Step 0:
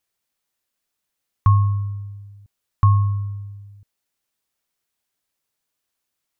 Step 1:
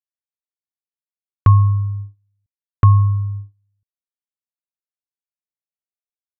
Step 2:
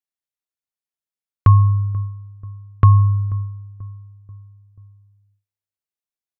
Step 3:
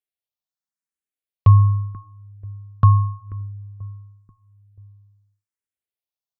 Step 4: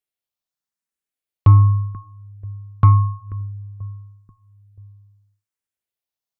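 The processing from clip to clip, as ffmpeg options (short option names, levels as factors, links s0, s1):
-af "lowpass=f=1100:w=0.5412,lowpass=f=1100:w=1.3066,agate=range=0.0316:threshold=0.0251:ratio=16:detection=peak,volume=1.68"
-filter_complex "[0:a]asplit=2[s0][s1];[s1]adelay=486,lowpass=f=880:p=1,volume=0.112,asplit=2[s2][s3];[s3]adelay=486,lowpass=f=880:p=1,volume=0.53,asplit=2[s4][s5];[s5]adelay=486,lowpass=f=880:p=1,volume=0.53,asplit=2[s6][s7];[s7]adelay=486,lowpass=f=880:p=1,volume=0.53[s8];[s0][s2][s4][s6][s8]amix=inputs=5:normalize=0"
-filter_complex "[0:a]asplit=2[s0][s1];[s1]afreqshift=0.86[s2];[s0][s2]amix=inputs=2:normalize=1"
-af "asoftclip=type=tanh:threshold=0.631,volume=1.33"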